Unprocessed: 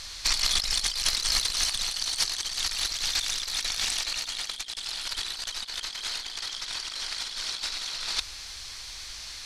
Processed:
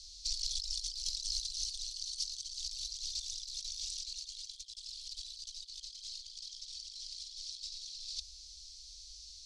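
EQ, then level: inverse Chebyshev band-stop 280–1100 Hz, stop band 80 dB; distance through air 120 m; bass shelf 88 Hz -8.5 dB; -1.5 dB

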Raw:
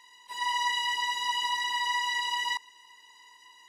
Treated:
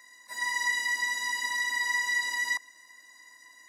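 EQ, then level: high-pass 120 Hz 12 dB/octave; static phaser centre 620 Hz, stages 8; band-stop 2.6 kHz, Q 20; +7.0 dB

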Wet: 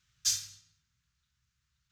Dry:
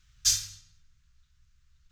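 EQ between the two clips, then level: high-pass 110 Hz 12 dB/octave; -5.0 dB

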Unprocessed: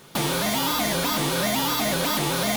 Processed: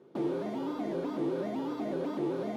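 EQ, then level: band-pass filter 360 Hz, Q 3; +1.0 dB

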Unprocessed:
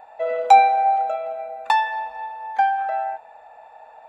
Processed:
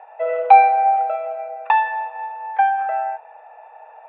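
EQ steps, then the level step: elliptic band-pass 430–2800 Hz, stop band 40 dB; distance through air 55 m; +3.0 dB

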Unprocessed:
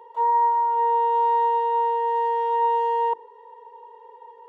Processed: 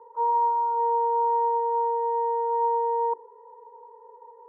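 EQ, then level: low-pass 1.3 kHz 24 dB/octave; band-stop 390 Hz, Q 12; static phaser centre 720 Hz, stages 6; 0.0 dB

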